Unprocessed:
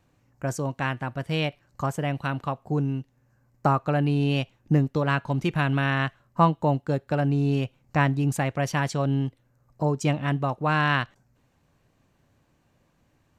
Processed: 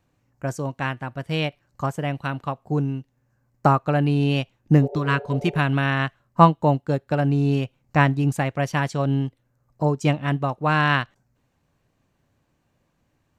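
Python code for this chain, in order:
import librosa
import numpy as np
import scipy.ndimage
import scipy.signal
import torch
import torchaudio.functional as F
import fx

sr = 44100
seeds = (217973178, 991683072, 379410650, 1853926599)

y = fx.spec_repair(x, sr, seeds[0], start_s=4.85, length_s=0.71, low_hz=390.0, high_hz=910.0, source='before')
y = fx.upward_expand(y, sr, threshold_db=-34.0, expansion=1.5)
y = y * librosa.db_to_amplitude(6.5)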